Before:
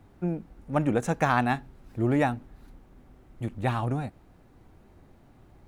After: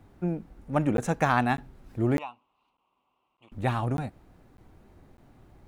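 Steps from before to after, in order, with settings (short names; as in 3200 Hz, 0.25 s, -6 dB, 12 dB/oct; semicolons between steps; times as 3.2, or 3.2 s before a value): 2.18–3.52 double band-pass 1700 Hz, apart 1.4 oct; crackling interface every 0.60 s, samples 512, zero, from 0.97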